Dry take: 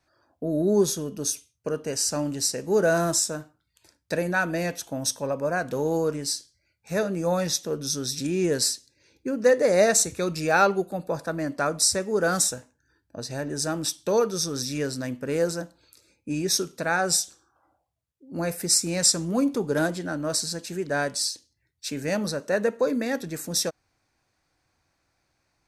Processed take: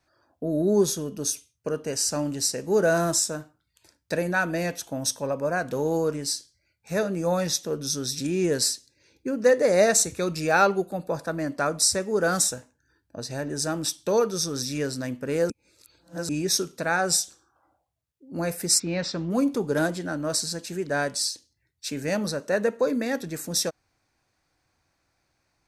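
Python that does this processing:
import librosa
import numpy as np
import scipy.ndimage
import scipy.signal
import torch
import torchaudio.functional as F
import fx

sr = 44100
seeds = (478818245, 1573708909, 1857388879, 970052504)

y = fx.lowpass(x, sr, hz=3900.0, slope=24, at=(18.78, 19.3), fade=0.02)
y = fx.edit(y, sr, fx.reverse_span(start_s=15.5, length_s=0.79), tone=tone)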